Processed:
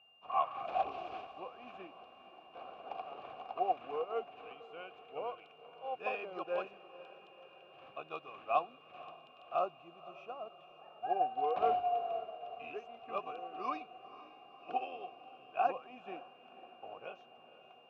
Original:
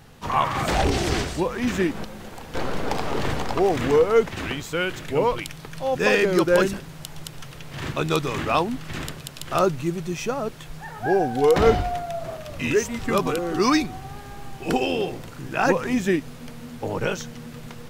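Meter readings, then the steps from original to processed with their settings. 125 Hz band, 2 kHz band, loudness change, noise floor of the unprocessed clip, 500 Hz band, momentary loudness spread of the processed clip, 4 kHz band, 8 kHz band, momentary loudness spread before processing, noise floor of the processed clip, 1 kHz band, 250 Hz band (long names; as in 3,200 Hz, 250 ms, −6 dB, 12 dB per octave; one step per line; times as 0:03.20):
below −35 dB, −21.5 dB, −15.5 dB, −40 dBFS, −18.0 dB, 21 LU, −22.5 dB, below −40 dB, 18 LU, −60 dBFS, −9.0 dB, −29.0 dB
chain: low-pass filter 3,800 Hz 12 dB per octave
steady tone 2,800 Hz −37 dBFS
formant filter a
on a send: feedback delay with all-pass diffusion 510 ms, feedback 65%, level −11.5 dB
on the sum: expander for the loud parts 1.5 to 1, over −42 dBFS
level −2.5 dB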